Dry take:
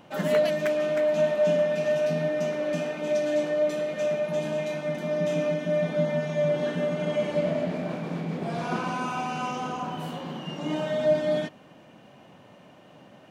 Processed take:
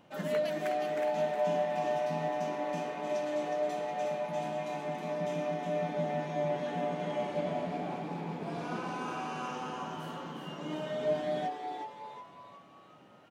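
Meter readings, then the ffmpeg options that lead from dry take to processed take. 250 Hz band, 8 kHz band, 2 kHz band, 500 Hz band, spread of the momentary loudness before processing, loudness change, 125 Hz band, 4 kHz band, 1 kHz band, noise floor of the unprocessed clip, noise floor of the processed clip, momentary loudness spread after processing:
−8.0 dB, can't be measured, −7.5 dB, −8.0 dB, 8 LU, −7.5 dB, −8.5 dB, −7.0 dB, 0.0 dB, −52 dBFS, −56 dBFS, 9 LU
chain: -filter_complex "[0:a]asplit=7[link_01][link_02][link_03][link_04][link_05][link_06][link_07];[link_02]adelay=365,afreqshift=130,volume=-6dB[link_08];[link_03]adelay=730,afreqshift=260,volume=-12.7dB[link_09];[link_04]adelay=1095,afreqshift=390,volume=-19.5dB[link_10];[link_05]adelay=1460,afreqshift=520,volume=-26.2dB[link_11];[link_06]adelay=1825,afreqshift=650,volume=-33dB[link_12];[link_07]adelay=2190,afreqshift=780,volume=-39.7dB[link_13];[link_01][link_08][link_09][link_10][link_11][link_12][link_13]amix=inputs=7:normalize=0,volume=-8.5dB"

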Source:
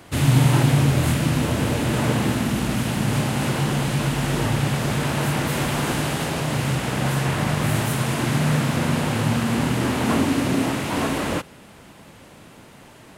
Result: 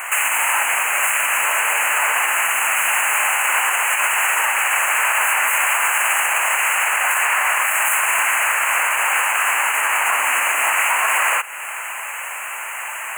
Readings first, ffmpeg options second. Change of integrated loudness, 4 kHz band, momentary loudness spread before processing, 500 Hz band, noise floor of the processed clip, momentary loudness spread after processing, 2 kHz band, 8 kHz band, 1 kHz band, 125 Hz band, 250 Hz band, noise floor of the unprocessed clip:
+5.0 dB, +4.0 dB, 5 LU, −5.5 dB, −29 dBFS, 11 LU, +13.5 dB, +12.5 dB, +9.0 dB, below −40 dB, below −30 dB, −46 dBFS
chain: -filter_complex "[0:a]acrossover=split=5400[link_01][link_02];[link_02]aeval=exprs='max(val(0),0)':channel_layout=same[link_03];[link_01][link_03]amix=inputs=2:normalize=0,acompressor=threshold=-35dB:ratio=2,asuperstop=centerf=4400:order=12:qfactor=1.1,highshelf=frequency=2000:gain=10,acontrast=57,highpass=frequency=870:width=0.5412,highpass=frequency=870:width=1.3066,alimiter=level_in=20.5dB:limit=-1dB:release=50:level=0:latency=1,volume=-7dB"

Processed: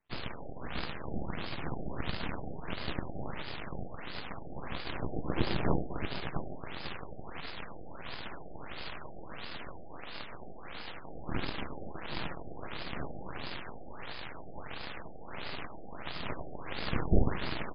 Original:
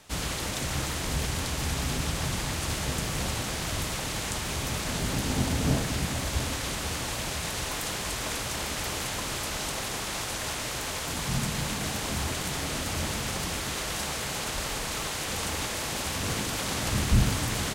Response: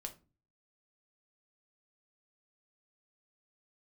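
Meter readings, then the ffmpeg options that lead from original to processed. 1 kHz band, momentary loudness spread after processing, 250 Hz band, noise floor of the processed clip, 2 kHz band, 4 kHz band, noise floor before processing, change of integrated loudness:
−7.5 dB, 12 LU, −6.5 dB, −41 dBFS, −9.5 dB, −12.5 dB, −33 dBFS, −10.0 dB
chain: -filter_complex "[0:a]aeval=exprs='0.299*(cos(1*acos(clip(val(0)/0.299,-1,1)))-cos(1*PI/2))+0.0944*(cos(3*acos(clip(val(0)/0.299,-1,1)))-cos(3*PI/2))+0.0119*(cos(5*acos(clip(val(0)/0.299,-1,1)))-cos(5*PI/2))+0.0596*(cos(6*acos(clip(val(0)/0.299,-1,1)))-cos(6*PI/2))+0.00944*(cos(7*acos(clip(val(0)/0.299,-1,1)))-cos(7*PI/2))':channel_layout=same,asplit=2[link_01][link_02];[1:a]atrim=start_sample=2205,asetrate=40572,aresample=44100[link_03];[link_02][link_03]afir=irnorm=-1:irlink=0,volume=-13dB[link_04];[link_01][link_04]amix=inputs=2:normalize=0,afftfilt=real='re*lt(b*sr/1024,780*pow(5200/780,0.5+0.5*sin(2*PI*1.5*pts/sr)))':imag='im*lt(b*sr/1024,780*pow(5200/780,0.5+0.5*sin(2*PI*1.5*pts/sr)))':win_size=1024:overlap=0.75,volume=-1.5dB"

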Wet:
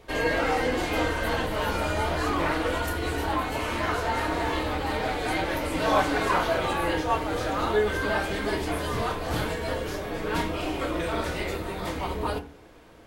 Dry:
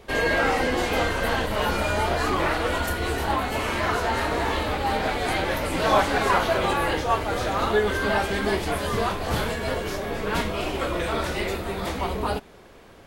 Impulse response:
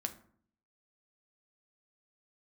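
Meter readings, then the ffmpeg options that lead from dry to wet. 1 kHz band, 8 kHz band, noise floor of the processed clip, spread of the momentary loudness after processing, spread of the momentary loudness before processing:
−3.0 dB, −3.5 dB, −46 dBFS, 7 LU, 7 LU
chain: -filter_complex "[1:a]atrim=start_sample=2205,asetrate=61740,aresample=44100[link_01];[0:a][link_01]afir=irnorm=-1:irlink=0"

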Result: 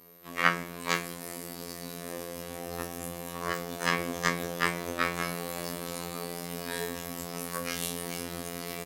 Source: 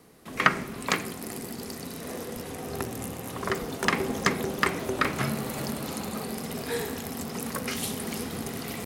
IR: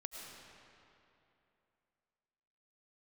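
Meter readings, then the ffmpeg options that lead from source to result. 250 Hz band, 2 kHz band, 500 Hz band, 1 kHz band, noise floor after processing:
−5.5 dB, −1.5 dB, −3.5 dB, −2.5 dB, −42 dBFS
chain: -af "lowshelf=frequency=150:gain=-6.5,areverse,acompressor=mode=upward:threshold=-49dB:ratio=2.5,areverse,afftfilt=real='hypot(re,im)*cos(PI*b)':imag='0':win_size=2048:overlap=0.75,aeval=exprs='val(0)+0.00112*sin(2*PI*13000*n/s)':channel_layout=same,aecho=1:1:25|41:0.237|0.178,afftfilt=real='re*2*eq(mod(b,4),0)':imag='im*2*eq(mod(b,4),0)':win_size=2048:overlap=0.75,volume=-1.5dB"

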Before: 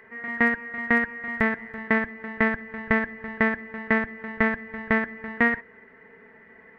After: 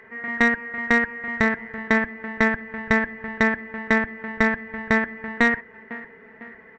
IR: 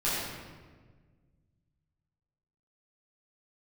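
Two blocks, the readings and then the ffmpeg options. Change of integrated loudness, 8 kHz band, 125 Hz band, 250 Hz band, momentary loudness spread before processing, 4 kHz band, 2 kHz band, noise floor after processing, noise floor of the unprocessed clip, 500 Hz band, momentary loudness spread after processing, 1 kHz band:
+2.5 dB, can't be measured, +2.5 dB, +2.5 dB, 10 LU, +8.0 dB, +3.0 dB, −48 dBFS, −52 dBFS, +2.5 dB, 10 LU, +3.0 dB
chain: -af "aecho=1:1:502|1004|1506|2008:0.126|0.0592|0.0278|0.0131,aresample=16000,aeval=exprs='clip(val(0),-1,0.106)':channel_layout=same,aresample=44100,volume=3dB"

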